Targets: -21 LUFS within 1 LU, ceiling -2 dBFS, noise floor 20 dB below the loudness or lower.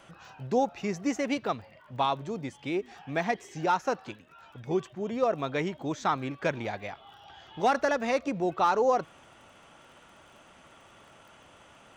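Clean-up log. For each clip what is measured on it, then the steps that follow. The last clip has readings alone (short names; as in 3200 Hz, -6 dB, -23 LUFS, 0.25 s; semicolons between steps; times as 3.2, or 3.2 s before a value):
ticks 25/s; loudness -30.0 LUFS; peak -13.5 dBFS; loudness target -21.0 LUFS
-> de-click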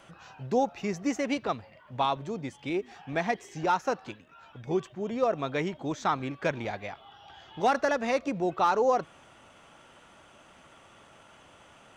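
ticks 0.084/s; loudness -30.0 LUFS; peak -13.5 dBFS; loudness target -21.0 LUFS
-> gain +9 dB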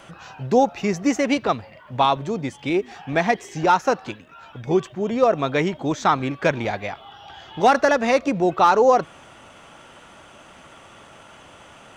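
loudness -21.0 LUFS; peak -4.5 dBFS; noise floor -47 dBFS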